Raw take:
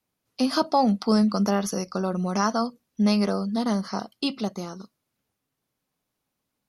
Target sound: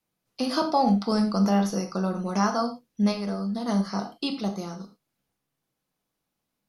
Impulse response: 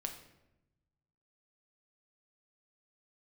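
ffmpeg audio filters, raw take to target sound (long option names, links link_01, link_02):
-filter_complex "[0:a]acrossover=split=5000[link_01][link_02];[link_02]alimiter=level_in=7dB:limit=-24dB:level=0:latency=1,volume=-7dB[link_03];[link_01][link_03]amix=inputs=2:normalize=0,asplit=3[link_04][link_05][link_06];[link_04]afade=type=out:start_time=3.11:duration=0.02[link_07];[link_05]acompressor=threshold=-26dB:ratio=6,afade=type=in:start_time=3.11:duration=0.02,afade=type=out:start_time=3.67:duration=0.02[link_08];[link_06]afade=type=in:start_time=3.67:duration=0.02[link_09];[link_07][link_08][link_09]amix=inputs=3:normalize=0[link_10];[1:a]atrim=start_sample=2205,afade=type=out:start_time=0.16:duration=0.01,atrim=end_sample=7497[link_11];[link_10][link_11]afir=irnorm=-1:irlink=0"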